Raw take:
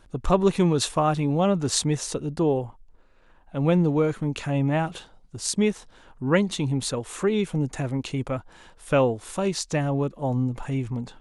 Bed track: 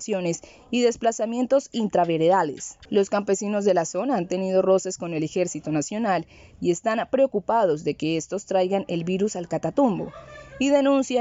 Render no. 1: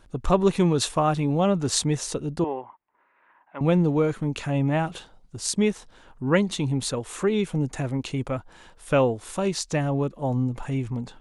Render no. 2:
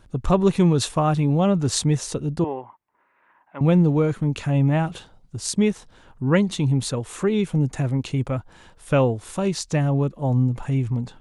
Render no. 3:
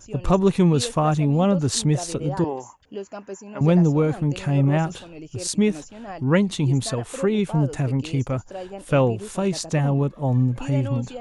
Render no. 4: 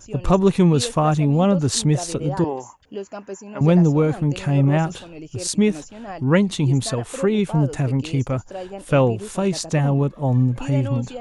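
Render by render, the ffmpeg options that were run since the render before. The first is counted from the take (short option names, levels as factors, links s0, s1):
-filter_complex "[0:a]asettb=1/sr,asplit=3[s0][s1][s2];[s0]atrim=end=2.444[s3];[s1]atrim=start=2.44:end=3.61,asetpts=PTS-STARTPTS,afade=t=in:d=0.004:c=qsin,afade=t=out:st=1.166:d=0.004:c=qsin,highpass=450,equalizer=f=480:t=q:w=4:g=-9,equalizer=f=700:t=q:w=4:g=-3,equalizer=f=1000:t=q:w=4:g=8,equalizer=f=2000:t=q:w=4:g=8,lowpass=f=2500:w=0.5412,lowpass=f=2500:w=1.3066[s4];[s2]atrim=start=3.606[s5];[s3][s4]acrossfade=d=0.004:c1=hsin:c2=qsin[s6];[s6][s5]acrossfade=d=0.004:c1=qsin:c2=hsin"
-af "equalizer=f=110:t=o:w=1.8:g=7"
-filter_complex "[1:a]volume=0.224[s0];[0:a][s0]amix=inputs=2:normalize=0"
-af "volume=1.26"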